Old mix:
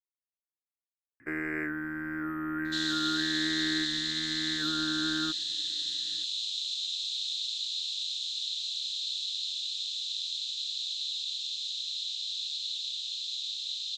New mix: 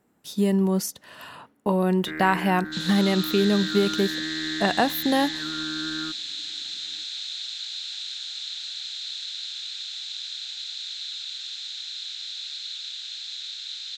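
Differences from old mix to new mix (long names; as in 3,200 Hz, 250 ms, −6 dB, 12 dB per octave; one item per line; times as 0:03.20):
speech: unmuted
first sound: entry +0.80 s
second sound: remove Butterworth high-pass 2,800 Hz 48 dB per octave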